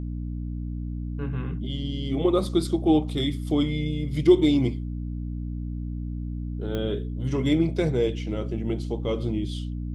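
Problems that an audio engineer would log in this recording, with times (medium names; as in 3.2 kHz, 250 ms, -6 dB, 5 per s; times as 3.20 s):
hum 60 Hz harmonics 5 -31 dBFS
6.75 s: pop -18 dBFS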